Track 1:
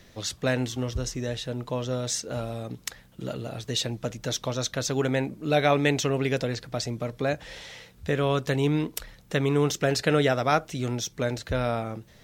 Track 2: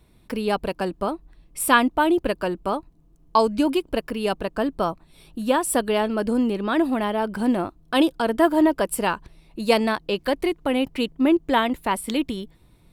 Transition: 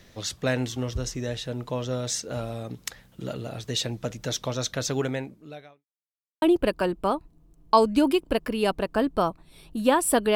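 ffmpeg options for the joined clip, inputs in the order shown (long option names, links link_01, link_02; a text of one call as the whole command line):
ffmpeg -i cue0.wav -i cue1.wav -filter_complex "[0:a]apad=whole_dur=10.35,atrim=end=10.35,asplit=2[link_01][link_02];[link_01]atrim=end=5.85,asetpts=PTS-STARTPTS,afade=type=out:start_time=4.95:duration=0.9:curve=qua[link_03];[link_02]atrim=start=5.85:end=6.42,asetpts=PTS-STARTPTS,volume=0[link_04];[1:a]atrim=start=2.04:end=5.97,asetpts=PTS-STARTPTS,afade=type=in:duration=0.004:curve=hsin[link_05];[link_03][link_04][link_05]concat=n=3:v=0:a=1" out.wav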